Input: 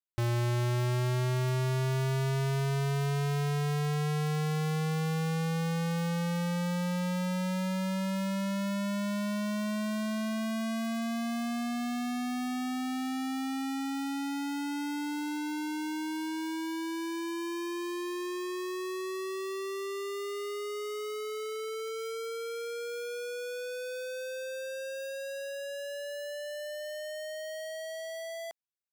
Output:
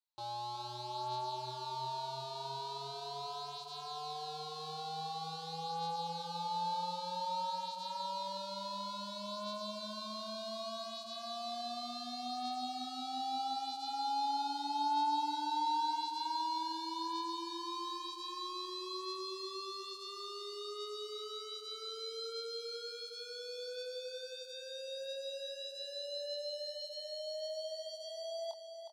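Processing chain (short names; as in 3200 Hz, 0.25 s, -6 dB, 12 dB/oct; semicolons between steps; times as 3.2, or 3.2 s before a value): hard clip -34 dBFS, distortion -13 dB; double band-pass 1900 Hz, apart 2.2 oct; doubler 24 ms -4 dB; on a send: feedback echo 0.364 s, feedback 46%, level -8 dB; on the sum: gain +8.5 dB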